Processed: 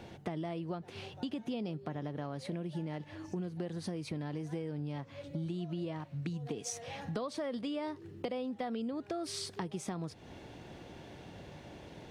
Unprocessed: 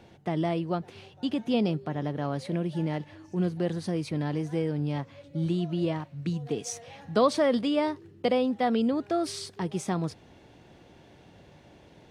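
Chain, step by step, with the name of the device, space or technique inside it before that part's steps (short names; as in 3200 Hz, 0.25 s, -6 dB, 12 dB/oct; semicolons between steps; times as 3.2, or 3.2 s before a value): serial compression, leveller first (compressor 2:1, threshold -29 dBFS, peak gain reduction 7 dB; compressor 4:1, threshold -41 dBFS, peak gain reduction 14.5 dB); gain +4 dB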